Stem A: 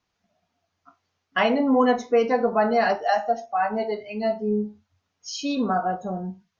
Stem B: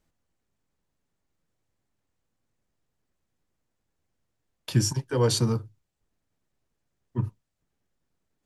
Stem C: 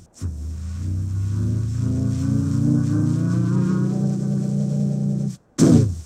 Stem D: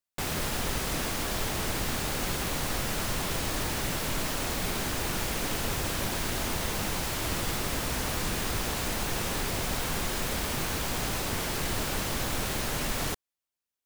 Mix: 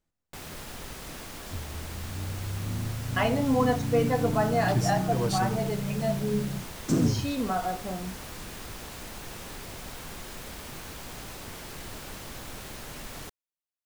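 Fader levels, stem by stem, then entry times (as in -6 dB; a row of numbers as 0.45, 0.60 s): -5.5, -7.0, -10.5, -10.0 dB; 1.80, 0.00, 1.30, 0.15 s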